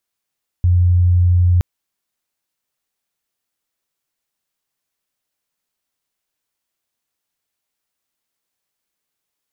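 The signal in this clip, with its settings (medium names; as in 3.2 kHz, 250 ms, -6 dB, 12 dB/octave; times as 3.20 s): tone sine 88.8 Hz -9.5 dBFS 0.97 s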